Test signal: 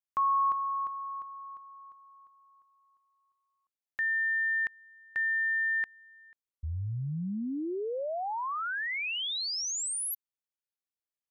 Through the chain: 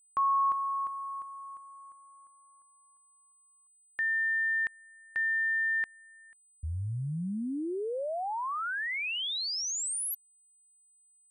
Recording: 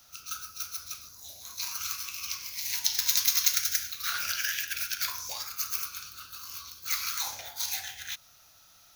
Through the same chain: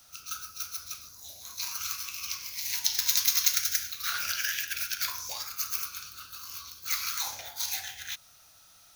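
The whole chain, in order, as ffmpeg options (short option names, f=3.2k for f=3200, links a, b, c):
-af "aeval=exprs='val(0)+0.000794*sin(2*PI*8100*n/s)':c=same"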